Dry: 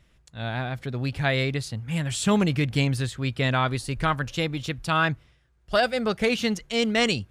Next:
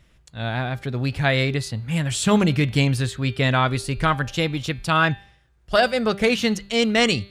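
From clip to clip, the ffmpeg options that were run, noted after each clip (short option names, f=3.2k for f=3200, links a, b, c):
-af "bandreject=f=198.7:t=h:w=4,bandreject=f=397.4:t=h:w=4,bandreject=f=596.1:t=h:w=4,bandreject=f=794.8:t=h:w=4,bandreject=f=993.5:t=h:w=4,bandreject=f=1.1922k:t=h:w=4,bandreject=f=1.3909k:t=h:w=4,bandreject=f=1.5896k:t=h:w=4,bandreject=f=1.7883k:t=h:w=4,bandreject=f=1.987k:t=h:w=4,bandreject=f=2.1857k:t=h:w=4,bandreject=f=2.3844k:t=h:w=4,bandreject=f=2.5831k:t=h:w=4,bandreject=f=2.7818k:t=h:w=4,bandreject=f=2.9805k:t=h:w=4,bandreject=f=3.1792k:t=h:w=4,bandreject=f=3.3779k:t=h:w=4,bandreject=f=3.5766k:t=h:w=4,bandreject=f=3.7753k:t=h:w=4,bandreject=f=3.974k:t=h:w=4,bandreject=f=4.1727k:t=h:w=4,bandreject=f=4.3714k:t=h:w=4,bandreject=f=4.5701k:t=h:w=4,bandreject=f=4.7688k:t=h:w=4,volume=4dB"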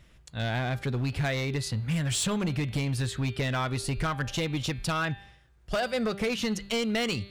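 -af "acompressor=threshold=-23dB:ratio=12,volume=23dB,asoftclip=hard,volume=-23dB"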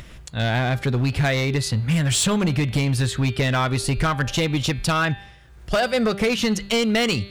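-af "acompressor=mode=upward:threshold=-41dB:ratio=2.5,volume=8dB"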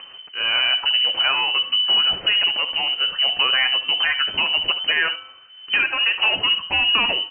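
-af "flanger=delay=3.5:depth=6.1:regen=-49:speed=0.38:shape=sinusoidal,aecho=1:1:71:0.211,lowpass=f=2.6k:t=q:w=0.5098,lowpass=f=2.6k:t=q:w=0.6013,lowpass=f=2.6k:t=q:w=0.9,lowpass=f=2.6k:t=q:w=2.563,afreqshift=-3100,volume=5dB"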